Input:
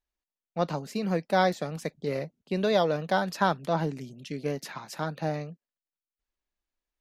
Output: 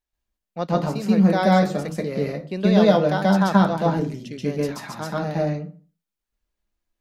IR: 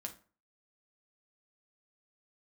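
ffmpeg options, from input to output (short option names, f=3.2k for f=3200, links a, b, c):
-filter_complex "[0:a]asplit=2[a][b];[1:a]atrim=start_sample=2205,lowshelf=f=270:g=10,adelay=131[c];[b][c]afir=irnorm=-1:irlink=0,volume=5.5dB[d];[a][d]amix=inputs=2:normalize=0"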